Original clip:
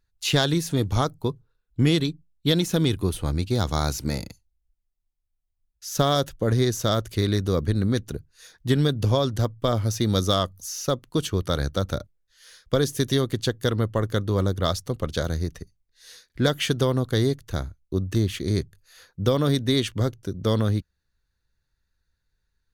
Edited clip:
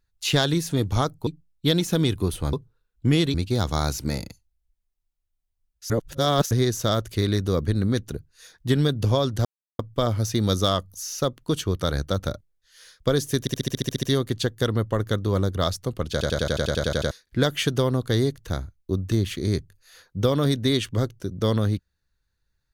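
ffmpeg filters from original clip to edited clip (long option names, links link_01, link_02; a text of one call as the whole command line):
ffmpeg -i in.wav -filter_complex "[0:a]asplit=27[link_01][link_02][link_03][link_04][link_05][link_06][link_07][link_08][link_09][link_10][link_11][link_12][link_13][link_14][link_15][link_16][link_17][link_18][link_19][link_20][link_21][link_22][link_23][link_24][link_25][link_26][link_27];[link_01]atrim=end=1.272[link_28];[link_02]atrim=start=2.078:end=3.342[link_29];[link_03]atrim=start=1.268:end=2.082[link_30];[link_04]atrim=start=3.338:end=5.902[link_31];[link_05]atrim=start=5.898:end=6.512,asetpts=PTS-STARTPTS,areverse[link_32];[link_06]atrim=start=6.508:end=9.45,asetpts=PTS-STARTPTS,afade=type=out:start_time=2.938:duration=0.004:curve=hsin,apad=pad_dur=0.34[link_33];[link_07]atrim=start=9.45:end=13.132,asetpts=PTS-STARTPTS,afade=type=in:duration=0.004:curve=hsin[link_34];[link_08]atrim=start=13.058:end=13.132[link_35];[link_09]atrim=start=13.058:end=13.132[link_36];[link_10]atrim=start=13.058:end=13.132[link_37];[link_11]atrim=start=13.058:end=13.132[link_38];[link_12]atrim=start=13.058:end=13.132[link_39];[link_13]atrim=start=13.058:end=13.132[link_40];[link_14]atrim=start=13.058:end=13.132[link_41];[link_15]atrim=start=13.058:end=13.132[link_42];[link_16]atrim=start=13.058:end=15.242[link_43];[link_17]atrim=start=15.148:end=15.242[link_44];[link_18]atrim=start=15.148:end=15.242[link_45];[link_19]atrim=start=15.148:end=15.242[link_46];[link_20]atrim=start=15.148:end=15.242[link_47];[link_21]atrim=start=15.148:end=15.242[link_48];[link_22]atrim=start=15.148:end=15.242[link_49];[link_23]atrim=start=15.148:end=15.242[link_50];[link_24]atrim=start=15.148:end=15.242[link_51];[link_25]atrim=start=15.148:end=15.242[link_52];[link_26]atrim=start=15.148:end=15.242[link_53];[link_27]atrim=start=16.138[link_54];[link_28][link_29]acrossfade=duration=0.004:curve1=hsin:curve2=hsin[link_55];[link_55][link_30]acrossfade=duration=0.004:curve1=hsin:curve2=hsin[link_56];[link_56][link_31]acrossfade=duration=0.004:curve1=hsin:curve2=hsin[link_57];[link_57][link_32]acrossfade=duration=0.004:curve1=hsin:curve2=hsin[link_58];[link_33][link_34]concat=n=2:v=0:a=1[link_59];[link_58][link_59]acrossfade=duration=0.004:curve1=hsin:curve2=hsin[link_60];[link_60][link_35]acrossfade=duration=0.004:curve1=hsin:curve2=hsin[link_61];[link_61][link_36]acrossfade=duration=0.004:curve1=hsin:curve2=hsin[link_62];[link_62][link_37]acrossfade=duration=0.004:curve1=hsin:curve2=hsin[link_63];[link_63][link_38]acrossfade=duration=0.004:curve1=hsin:curve2=hsin[link_64];[link_64][link_39]acrossfade=duration=0.004:curve1=hsin:curve2=hsin[link_65];[link_65][link_40]acrossfade=duration=0.004:curve1=hsin:curve2=hsin[link_66];[link_66][link_41]acrossfade=duration=0.004:curve1=hsin:curve2=hsin[link_67];[link_67][link_42]acrossfade=duration=0.004:curve1=hsin:curve2=hsin[link_68];[link_68][link_43]acrossfade=duration=0.004:curve1=hsin:curve2=hsin[link_69];[link_69][link_44]acrossfade=duration=0.004:curve1=hsin:curve2=hsin[link_70];[link_70][link_45]acrossfade=duration=0.004:curve1=hsin:curve2=hsin[link_71];[link_71][link_46]acrossfade=duration=0.004:curve1=hsin:curve2=hsin[link_72];[link_72][link_47]acrossfade=duration=0.004:curve1=hsin:curve2=hsin[link_73];[link_73][link_48]acrossfade=duration=0.004:curve1=hsin:curve2=hsin[link_74];[link_74][link_49]acrossfade=duration=0.004:curve1=hsin:curve2=hsin[link_75];[link_75][link_50]acrossfade=duration=0.004:curve1=hsin:curve2=hsin[link_76];[link_76][link_51]acrossfade=duration=0.004:curve1=hsin:curve2=hsin[link_77];[link_77][link_52]acrossfade=duration=0.004:curve1=hsin:curve2=hsin[link_78];[link_78][link_53]acrossfade=duration=0.004:curve1=hsin:curve2=hsin[link_79];[link_79][link_54]acrossfade=duration=0.004:curve1=hsin:curve2=hsin" out.wav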